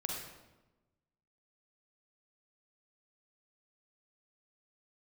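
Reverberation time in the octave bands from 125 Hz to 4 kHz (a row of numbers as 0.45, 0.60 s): 1.4, 1.3, 1.2, 1.0, 0.85, 0.75 s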